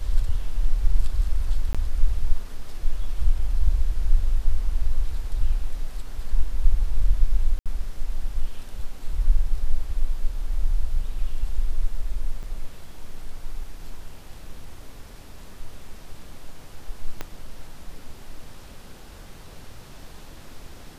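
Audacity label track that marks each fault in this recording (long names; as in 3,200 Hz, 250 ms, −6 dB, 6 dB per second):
1.730000	1.750000	drop-out 16 ms
7.590000	7.660000	drop-out 67 ms
12.430000	12.430000	drop-out 4.7 ms
17.210000	17.210000	click −15 dBFS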